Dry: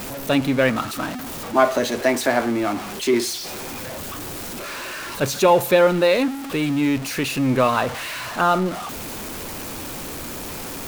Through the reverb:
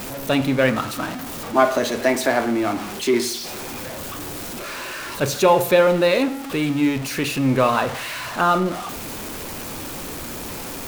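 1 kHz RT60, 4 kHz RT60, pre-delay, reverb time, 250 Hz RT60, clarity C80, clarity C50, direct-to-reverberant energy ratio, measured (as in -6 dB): 0.55 s, 0.45 s, 24 ms, 0.55 s, 0.70 s, 17.5 dB, 14.5 dB, 11.0 dB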